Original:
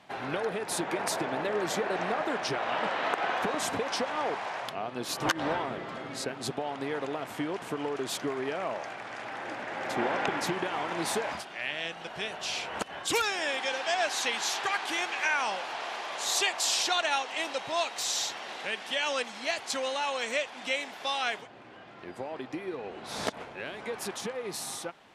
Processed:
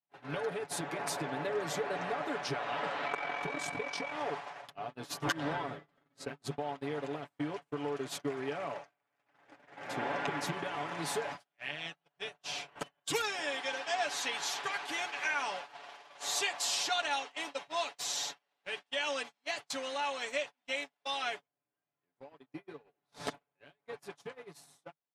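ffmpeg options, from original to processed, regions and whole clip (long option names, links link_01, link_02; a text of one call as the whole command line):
ffmpeg -i in.wav -filter_complex "[0:a]asettb=1/sr,asplit=3[link_01][link_02][link_03];[link_01]atrim=end=3.064[link_04];[link_02]atrim=start=3.06:end=4.12,asetpts=PTS-STARTPTS,afade=type=in:duration=0.004:curve=qsin,afade=type=out:start_time=1.056:duration=0.004:curve=qsin,lowpass=10000,aeval=exprs='val(0)+0.02*sin(2*PI*2300*n/s)':channel_layout=same,aeval=exprs='val(0)*sin(2*PI*22*n/s)':channel_layout=same[link_05];[link_03]atrim=start=4.116[link_06];[link_04][link_05]acrossfade=duration=0.004:curve1=hsin:curve2=qsin[link_07];[link_07][link_06]acrossfade=duration=0.004:curve1=qsin:curve2=hsin,agate=range=-38dB:threshold=-34dB:ratio=16:detection=peak,equalizer=frequency=150:width=6.1:gain=5.5,aecho=1:1:7:0.69,volume=-7dB" out.wav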